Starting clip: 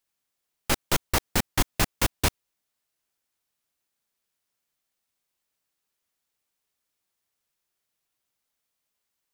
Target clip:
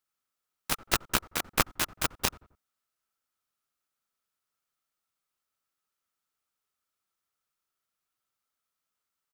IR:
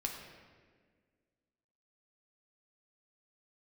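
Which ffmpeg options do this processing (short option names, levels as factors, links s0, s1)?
-filter_complex "[0:a]equalizer=f=1300:t=o:w=0.26:g=13,asplit=2[s0][s1];[s1]adelay=89,lowpass=f=1400:p=1,volume=0.0794,asplit=2[s2][s3];[s3]adelay=89,lowpass=f=1400:p=1,volume=0.41,asplit=2[s4][s5];[s5]adelay=89,lowpass=f=1400:p=1,volume=0.41[s6];[s0][s2][s4][s6]amix=inputs=4:normalize=0,aeval=exprs='0.422*(cos(1*acos(clip(val(0)/0.422,-1,1)))-cos(1*PI/2))+0.168*(cos(3*acos(clip(val(0)/0.422,-1,1)))-cos(3*PI/2))+0.0106*(cos(7*acos(clip(val(0)/0.422,-1,1)))-cos(7*PI/2))':c=same,volume=1.41"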